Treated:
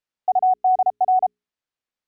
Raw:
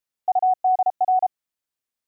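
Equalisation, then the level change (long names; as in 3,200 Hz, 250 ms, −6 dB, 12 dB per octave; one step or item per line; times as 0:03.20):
high-frequency loss of the air 100 metres
mains-hum notches 60/120/180/240/300/360/420 Hz
+2.0 dB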